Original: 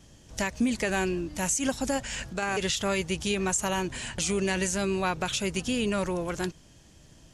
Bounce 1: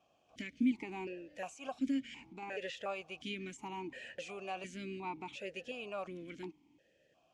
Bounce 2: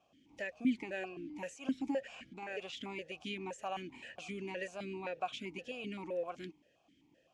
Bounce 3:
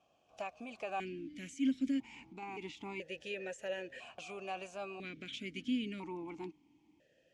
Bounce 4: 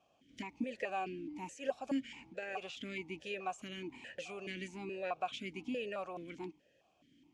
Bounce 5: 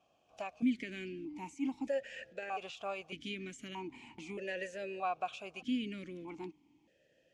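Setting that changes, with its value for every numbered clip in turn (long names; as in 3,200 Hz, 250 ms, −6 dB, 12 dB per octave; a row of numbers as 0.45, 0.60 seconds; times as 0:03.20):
formant filter that steps through the vowels, speed: 2.8, 7.7, 1, 4.7, 1.6 Hertz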